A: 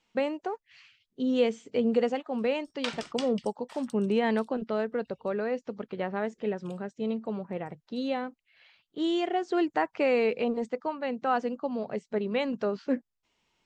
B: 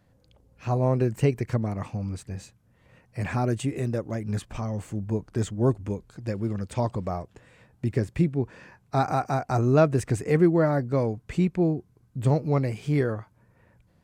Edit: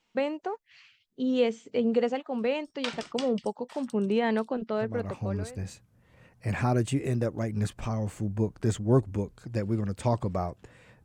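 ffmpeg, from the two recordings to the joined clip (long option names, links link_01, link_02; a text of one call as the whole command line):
ffmpeg -i cue0.wav -i cue1.wav -filter_complex "[0:a]apad=whole_dur=11.04,atrim=end=11.04,atrim=end=5.61,asetpts=PTS-STARTPTS[link_01];[1:a]atrim=start=1.45:end=7.76,asetpts=PTS-STARTPTS[link_02];[link_01][link_02]acrossfade=duration=0.88:curve1=qsin:curve2=qsin" out.wav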